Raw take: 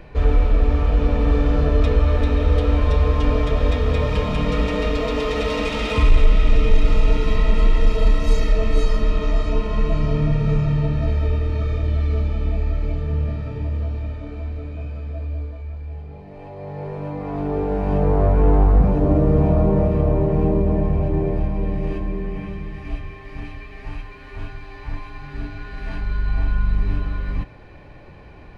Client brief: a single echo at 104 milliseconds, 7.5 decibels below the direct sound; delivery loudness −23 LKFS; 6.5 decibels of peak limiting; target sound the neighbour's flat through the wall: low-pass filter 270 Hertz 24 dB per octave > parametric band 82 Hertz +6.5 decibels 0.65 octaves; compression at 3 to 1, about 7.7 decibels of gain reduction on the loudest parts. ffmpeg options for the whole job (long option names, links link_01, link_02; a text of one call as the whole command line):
ffmpeg -i in.wav -af "acompressor=threshold=-19dB:ratio=3,alimiter=limit=-18dB:level=0:latency=1,lowpass=frequency=270:width=0.5412,lowpass=frequency=270:width=1.3066,equalizer=frequency=82:width_type=o:width=0.65:gain=6.5,aecho=1:1:104:0.422,volume=3dB" out.wav